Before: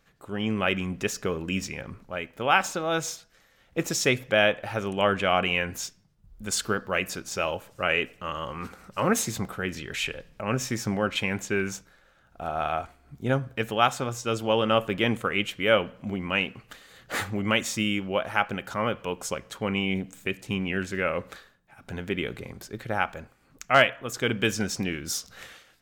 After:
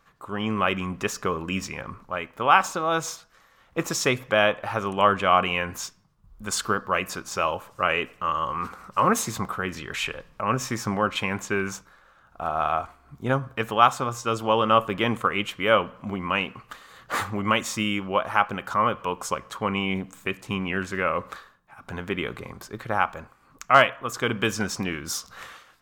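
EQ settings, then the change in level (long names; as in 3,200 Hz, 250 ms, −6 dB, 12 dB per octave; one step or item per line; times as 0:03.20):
parametric band 1,100 Hz +13 dB 0.67 octaves
dynamic equaliser 1,500 Hz, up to −3 dB, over −26 dBFS, Q 0.71
0.0 dB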